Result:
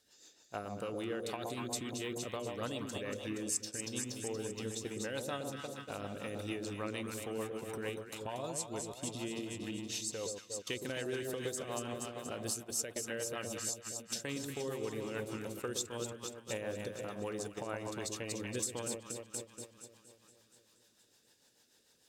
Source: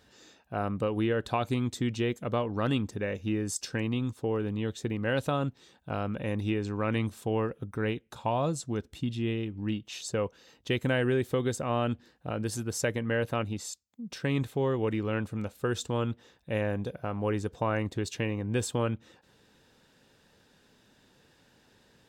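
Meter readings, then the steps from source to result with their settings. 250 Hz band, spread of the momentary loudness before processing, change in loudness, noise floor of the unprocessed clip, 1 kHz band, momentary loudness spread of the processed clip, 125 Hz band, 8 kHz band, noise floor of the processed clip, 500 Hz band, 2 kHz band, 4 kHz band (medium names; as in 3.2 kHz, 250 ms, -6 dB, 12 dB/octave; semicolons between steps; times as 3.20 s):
-10.5 dB, 7 LU, -8.0 dB, -64 dBFS, -10.0 dB, 5 LU, -15.0 dB, +3.0 dB, -69 dBFS, -8.5 dB, -8.0 dB, -2.5 dB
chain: tone controls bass -9 dB, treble +15 dB; echo whose repeats swap between lows and highs 118 ms, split 910 Hz, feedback 80%, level -4 dB; compression 2.5:1, threshold -41 dBFS, peak gain reduction 16.5 dB; gate -42 dBFS, range -12 dB; rotary cabinet horn 6.7 Hz; trim +2 dB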